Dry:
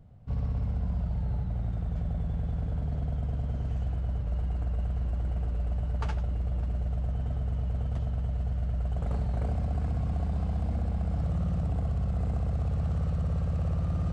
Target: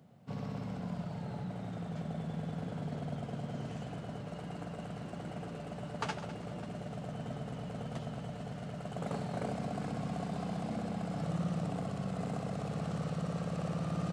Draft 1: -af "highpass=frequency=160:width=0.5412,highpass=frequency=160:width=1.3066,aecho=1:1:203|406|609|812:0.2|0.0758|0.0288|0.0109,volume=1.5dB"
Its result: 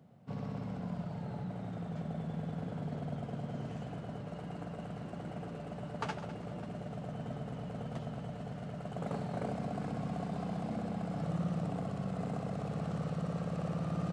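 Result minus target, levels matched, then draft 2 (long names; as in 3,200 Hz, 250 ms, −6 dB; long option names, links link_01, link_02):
4,000 Hz band −3.5 dB
-af "highpass=frequency=160:width=0.5412,highpass=frequency=160:width=1.3066,highshelf=frequency=2500:gain=6,aecho=1:1:203|406|609|812:0.2|0.0758|0.0288|0.0109,volume=1.5dB"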